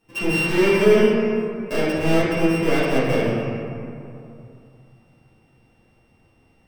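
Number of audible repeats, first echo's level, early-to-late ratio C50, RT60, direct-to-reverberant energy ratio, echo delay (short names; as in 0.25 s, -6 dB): none, none, -2.0 dB, 2.7 s, -12.0 dB, none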